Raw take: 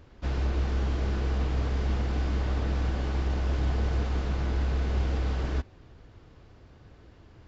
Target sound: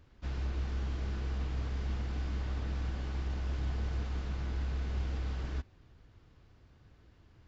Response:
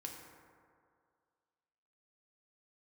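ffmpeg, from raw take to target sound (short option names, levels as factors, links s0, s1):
-af "equalizer=f=520:t=o:w=1.9:g=-5,volume=0.447"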